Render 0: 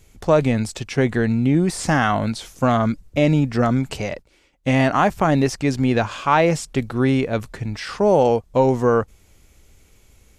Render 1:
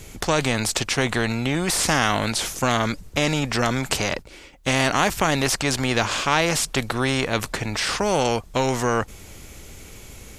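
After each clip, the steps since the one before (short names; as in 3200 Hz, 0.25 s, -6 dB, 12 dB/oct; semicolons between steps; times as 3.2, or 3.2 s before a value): spectral compressor 2:1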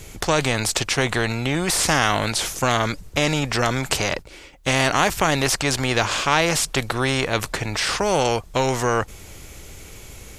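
bell 230 Hz -4.5 dB 0.47 oct; gain +1.5 dB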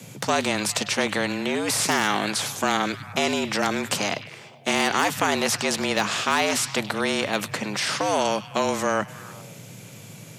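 delay with a stepping band-pass 0.101 s, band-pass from 3700 Hz, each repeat -0.7 oct, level -10.5 dB; wavefolder -7 dBFS; frequency shift +100 Hz; gain -3 dB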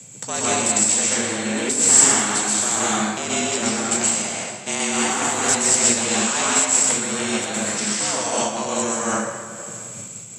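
synth low-pass 7700 Hz, resonance Q 14; plate-style reverb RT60 1.9 s, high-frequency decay 0.7×, pre-delay 0.11 s, DRR -6.5 dB; noise-modulated level, depth 60%; gain -4.5 dB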